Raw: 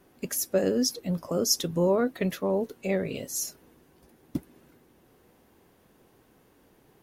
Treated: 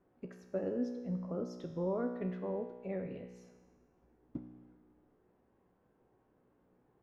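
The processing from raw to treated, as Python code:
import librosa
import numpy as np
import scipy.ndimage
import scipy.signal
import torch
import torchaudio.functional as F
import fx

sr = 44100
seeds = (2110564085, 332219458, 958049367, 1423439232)

y = scipy.signal.sosfilt(scipy.signal.butter(2, 1400.0, 'lowpass', fs=sr, output='sos'), x)
y = fx.comb_fb(y, sr, f0_hz=61.0, decay_s=1.3, harmonics='all', damping=0.0, mix_pct=80)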